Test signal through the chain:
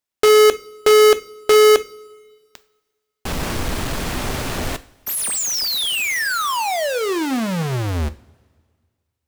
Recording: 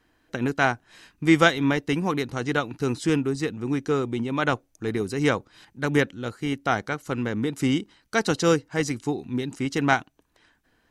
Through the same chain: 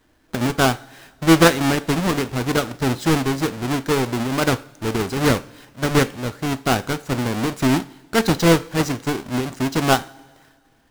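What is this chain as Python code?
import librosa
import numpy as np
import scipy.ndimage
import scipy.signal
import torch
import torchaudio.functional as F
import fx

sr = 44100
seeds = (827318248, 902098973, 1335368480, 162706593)

y = fx.halfwave_hold(x, sr)
y = fx.rev_double_slope(y, sr, seeds[0], early_s=0.37, late_s=1.8, knee_db=-18, drr_db=12.5)
y = fx.doppler_dist(y, sr, depth_ms=0.36)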